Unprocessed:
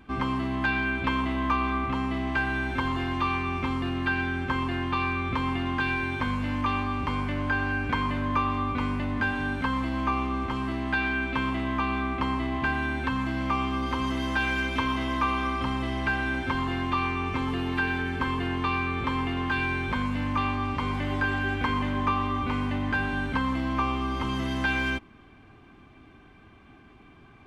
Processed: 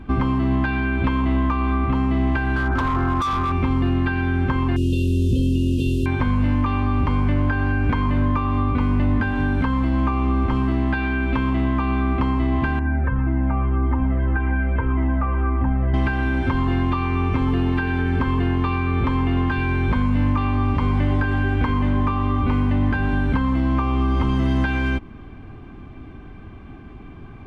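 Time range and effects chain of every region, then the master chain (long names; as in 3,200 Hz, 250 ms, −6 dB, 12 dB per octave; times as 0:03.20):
0:02.56–0:03.52: low-pass with resonance 1,300 Hz + hard clipping −22.5 dBFS
0:04.76–0:06.06: linear delta modulator 64 kbit/s, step −35 dBFS + linear-phase brick-wall band-stop 570–2,500 Hz
0:12.79–0:15.94: low-pass filter 1,900 Hz 24 dB per octave + notch filter 1,100 Hz, Q 6.5 + flanger whose copies keep moving one way falling 1.8 Hz
whole clip: downward compressor, threshold −29 dBFS; spectral tilt −2.5 dB per octave; level +7.5 dB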